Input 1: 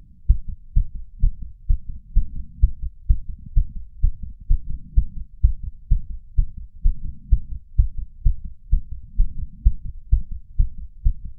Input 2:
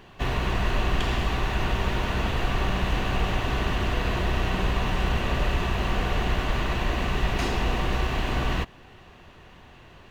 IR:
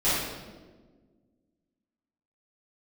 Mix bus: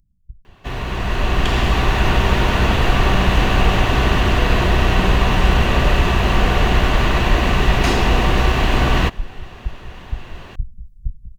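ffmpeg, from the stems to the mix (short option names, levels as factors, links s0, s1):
-filter_complex "[0:a]alimiter=limit=0.355:level=0:latency=1:release=256,bass=f=250:g=2,treble=f=4000:g=12,volume=0.112,asplit=2[s0][s1];[s1]volume=0.158[s2];[1:a]adelay=450,volume=0.794[s3];[s2]aecho=0:1:1140:1[s4];[s0][s3][s4]amix=inputs=3:normalize=0,dynaudnorm=f=230:g=11:m=5.31"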